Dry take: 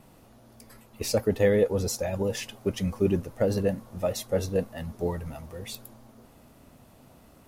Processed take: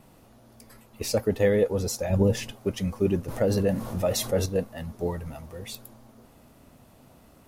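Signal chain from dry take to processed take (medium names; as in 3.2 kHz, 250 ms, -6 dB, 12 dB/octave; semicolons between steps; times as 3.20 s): 2.10–2.52 s: bass shelf 350 Hz +11.5 dB; 3.28–4.46 s: level flattener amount 50%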